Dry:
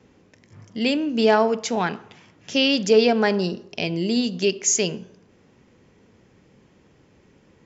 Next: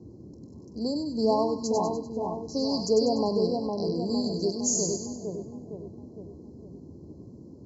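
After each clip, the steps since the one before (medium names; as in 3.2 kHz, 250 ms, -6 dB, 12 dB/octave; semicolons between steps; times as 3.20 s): two-band feedback delay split 1.3 kHz, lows 459 ms, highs 98 ms, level -4 dB; FFT band-reject 1.1–4 kHz; band noise 65–360 Hz -39 dBFS; trim -7 dB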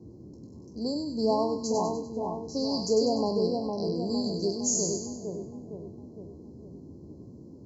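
spectral sustain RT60 0.31 s; trim -2 dB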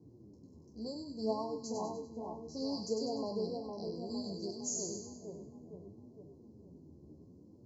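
flange 0.64 Hz, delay 6.6 ms, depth 7.7 ms, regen +33%; trim -6.5 dB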